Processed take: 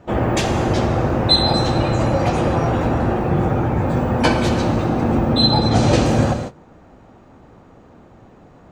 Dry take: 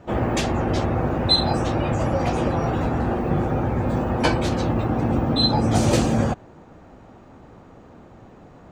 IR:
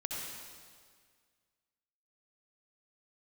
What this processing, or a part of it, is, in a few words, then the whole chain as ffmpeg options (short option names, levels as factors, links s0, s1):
keyed gated reverb: -filter_complex "[0:a]asplit=3[s0][s1][s2];[s0]afade=t=out:st=5.5:d=0.02[s3];[s1]lowpass=5600,afade=t=in:st=5.5:d=0.02,afade=t=out:st=6.04:d=0.02[s4];[s2]afade=t=in:st=6.04:d=0.02[s5];[s3][s4][s5]amix=inputs=3:normalize=0,asplit=3[s6][s7][s8];[1:a]atrim=start_sample=2205[s9];[s7][s9]afir=irnorm=-1:irlink=0[s10];[s8]apad=whole_len=384369[s11];[s10][s11]sidechaingate=range=0.0224:threshold=0.0112:ratio=16:detection=peak,volume=0.668[s12];[s6][s12]amix=inputs=2:normalize=0"